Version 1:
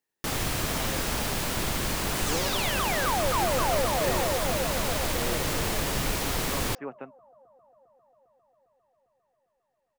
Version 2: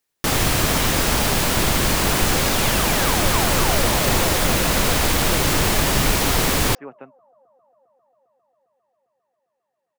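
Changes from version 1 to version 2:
first sound +10.0 dB
second sound: add Bessel high-pass filter 190 Hz

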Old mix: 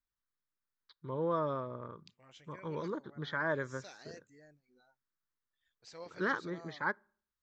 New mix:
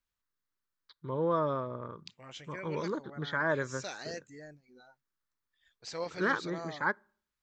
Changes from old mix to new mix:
first voice +3.5 dB
second voice +11.0 dB

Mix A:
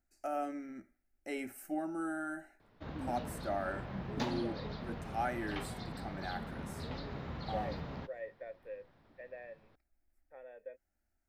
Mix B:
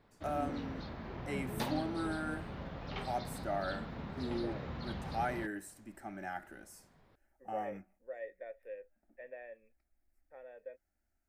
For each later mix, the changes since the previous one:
background: entry −2.60 s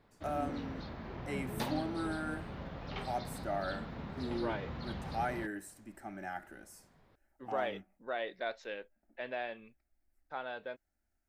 second voice: remove formant resonators in series e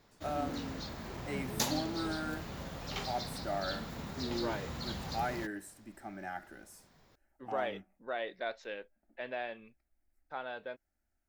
background: remove high-frequency loss of the air 290 metres

